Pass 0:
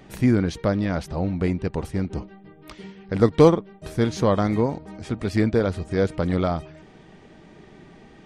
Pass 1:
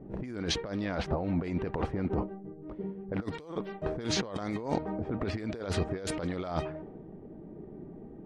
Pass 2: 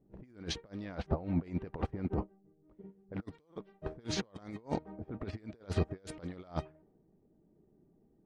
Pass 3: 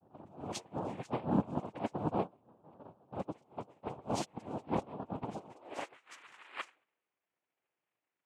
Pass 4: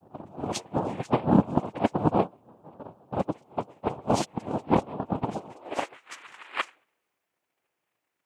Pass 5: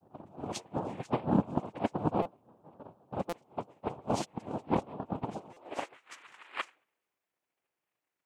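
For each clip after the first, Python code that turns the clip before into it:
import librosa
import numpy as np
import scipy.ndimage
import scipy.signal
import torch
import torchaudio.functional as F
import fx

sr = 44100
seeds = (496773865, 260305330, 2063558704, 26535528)

y1 = fx.bass_treble(x, sr, bass_db=-8, treble_db=2)
y1 = fx.env_lowpass(y1, sr, base_hz=300.0, full_db=-19.5)
y1 = fx.over_compress(y1, sr, threshold_db=-34.0, ratio=-1.0)
y2 = fx.low_shelf(y1, sr, hz=220.0, db=3.5)
y2 = fx.upward_expand(y2, sr, threshold_db=-39.0, expansion=2.5)
y2 = F.gain(torch.from_numpy(y2), -1.0).numpy()
y3 = fx.filter_sweep_highpass(y2, sr, from_hz=290.0, to_hz=1300.0, start_s=5.31, end_s=6.02, q=5.3)
y3 = fx.dispersion(y3, sr, late='highs', ms=49.0, hz=2000.0)
y3 = fx.noise_vocoder(y3, sr, seeds[0], bands=4)
y3 = F.gain(torch.from_numpy(y3), -5.0).numpy()
y4 = fx.transient(y3, sr, attack_db=6, sustain_db=2)
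y4 = F.gain(torch.from_numpy(y4), 7.5).numpy()
y5 = fx.buffer_glitch(y4, sr, at_s=(2.22, 3.29, 5.53), block=256, repeats=5)
y5 = F.gain(torch.from_numpy(y5), -7.0).numpy()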